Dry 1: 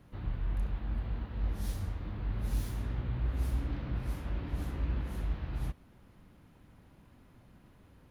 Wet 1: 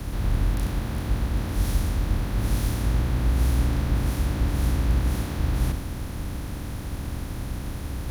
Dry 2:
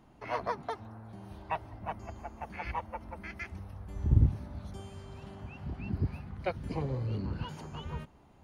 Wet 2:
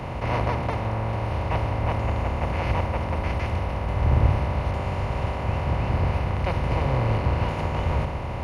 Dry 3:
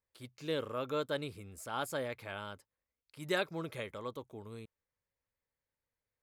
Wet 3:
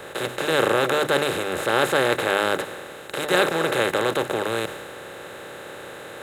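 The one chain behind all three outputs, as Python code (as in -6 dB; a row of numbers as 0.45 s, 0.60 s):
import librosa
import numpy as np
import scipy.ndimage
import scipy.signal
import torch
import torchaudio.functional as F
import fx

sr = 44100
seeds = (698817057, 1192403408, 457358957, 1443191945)

y = fx.bin_compress(x, sr, power=0.2)
y = fx.hum_notches(y, sr, base_hz=50, count=6)
y = fx.band_widen(y, sr, depth_pct=70)
y = y * 10.0 ** (-24 / 20.0) / np.sqrt(np.mean(np.square(y)))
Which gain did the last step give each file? +6.5 dB, -0.5 dB, +8.0 dB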